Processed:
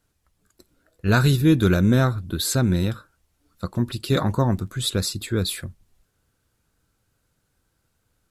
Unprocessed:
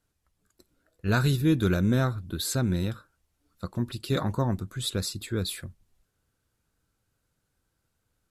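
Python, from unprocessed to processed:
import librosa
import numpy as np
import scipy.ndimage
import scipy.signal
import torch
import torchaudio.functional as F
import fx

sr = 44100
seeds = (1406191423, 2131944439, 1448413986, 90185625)

y = fx.dmg_crackle(x, sr, seeds[0], per_s=51.0, level_db=-55.0, at=(4.38, 4.84), fade=0.02)
y = F.gain(torch.from_numpy(y), 6.0).numpy()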